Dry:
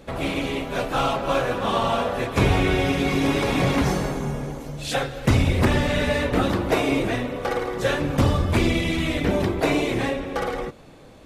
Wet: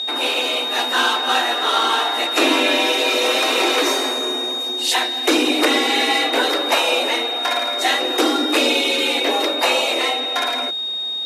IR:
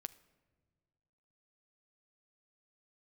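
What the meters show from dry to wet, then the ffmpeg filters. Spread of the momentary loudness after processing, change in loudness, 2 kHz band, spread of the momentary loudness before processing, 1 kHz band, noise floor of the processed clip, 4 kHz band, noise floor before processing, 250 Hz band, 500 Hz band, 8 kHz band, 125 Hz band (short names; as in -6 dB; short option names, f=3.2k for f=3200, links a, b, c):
4 LU, +6.0 dB, +7.5 dB, 7 LU, +6.0 dB, -25 dBFS, +15.5 dB, -46 dBFS, -0.5 dB, +2.5 dB, +10.5 dB, under -40 dB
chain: -af "tiltshelf=f=1.2k:g=-5.5,aeval=exprs='val(0)+0.0447*sin(2*PI*3500*n/s)':c=same,afreqshift=220,volume=5dB"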